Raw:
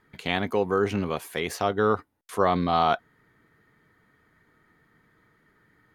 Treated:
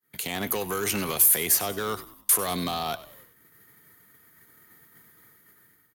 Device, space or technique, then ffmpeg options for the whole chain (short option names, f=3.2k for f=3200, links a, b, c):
FM broadcast chain: -filter_complex "[0:a]agate=range=-33dB:threshold=-54dB:ratio=3:detection=peak,highpass=73,dynaudnorm=f=170:g=5:m=13dB,acrossover=split=150|680|2400[a][b][c][d];[a]acompressor=threshold=-43dB:ratio=4[e];[b]acompressor=threshold=-30dB:ratio=4[f];[c]acompressor=threshold=-32dB:ratio=4[g];[d]acompressor=threshold=-37dB:ratio=4[h];[e][f][g][h]amix=inputs=4:normalize=0,aemphasis=mode=production:type=50fm,alimiter=limit=-19dB:level=0:latency=1:release=43,asoftclip=type=hard:threshold=-23dB,lowpass=f=15k:w=0.5412,lowpass=f=15k:w=1.3066,aemphasis=mode=production:type=50fm,asplit=5[i][j][k][l][m];[j]adelay=96,afreqshift=-56,volume=-16.5dB[n];[k]adelay=192,afreqshift=-112,volume=-23.6dB[o];[l]adelay=288,afreqshift=-168,volume=-30.8dB[p];[m]adelay=384,afreqshift=-224,volume=-37.9dB[q];[i][n][o][p][q]amix=inputs=5:normalize=0"